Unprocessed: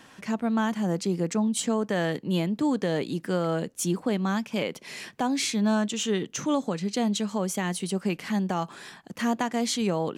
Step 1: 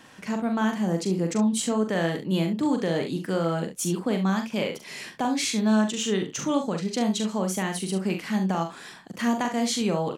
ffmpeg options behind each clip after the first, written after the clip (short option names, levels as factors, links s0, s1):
-af "aecho=1:1:42|69:0.501|0.282"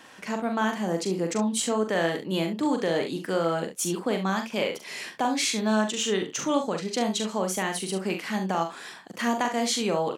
-af "bass=f=250:g=-10,treble=f=4000:g=-1,volume=1.26"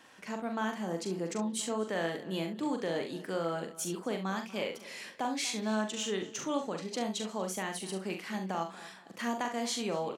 -filter_complex "[0:a]asplit=2[s0][s1];[s1]adelay=239,lowpass=f=4400:p=1,volume=0.126,asplit=2[s2][s3];[s3]adelay=239,lowpass=f=4400:p=1,volume=0.34,asplit=2[s4][s5];[s5]adelay=239,lowpass=f=4400:p=1,volume=0.34[s6];[s0][s2][s4][s6]amix=inputs=4:normalize=0,volume=0.398"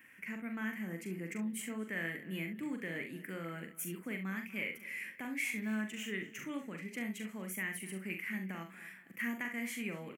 -af "firequalizer=gain_entry='entry(230,0);entry(440,-9);entry(800,-16);entry(2100,11);entry(3800,-19);entry(13000,11)':delay=0.05:min_phase=1,volume=0.708"